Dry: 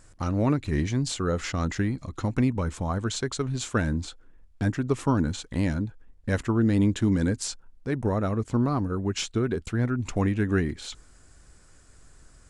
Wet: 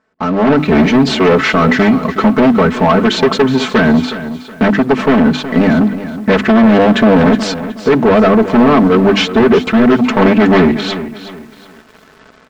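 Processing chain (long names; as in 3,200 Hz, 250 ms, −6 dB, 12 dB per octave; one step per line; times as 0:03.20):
wavefolder on the positive side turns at −23.5 dBFS
high-pass filter 240 Hz 12 dB per octave
parametric band 8,100 Hz −14 dB 1.6 octaves
mains-hum notches 50/100/150/200/250/300/350 Hz
comb filter 4.6 ms, depth 94%
in parallel at −1 dB: brickwall limiter −20.5 dBFS, peak gain reduction 9.5 dB
on the sum: automatic gain control gain up to 13 dB
leveller curve on the samples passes 3
high-frequency loss of the air 150 metres
feedback echo at a low word length 368 ms, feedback 35%, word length 6 bits, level −12.5 dB
level −1.5 dB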